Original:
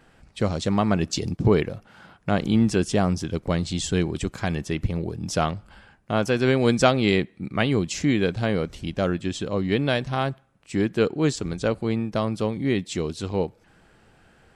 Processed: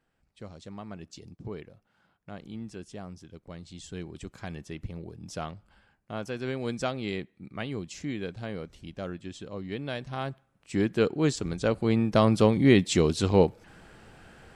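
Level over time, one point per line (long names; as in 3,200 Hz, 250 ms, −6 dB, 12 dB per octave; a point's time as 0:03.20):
0:03.47 −20 dB
0:04.37 −12.5 dB
0:09.80 −12.5 dB
0:10.78 −3 dB
0:11.61 −3 dB
0:12.28 +4.5 dB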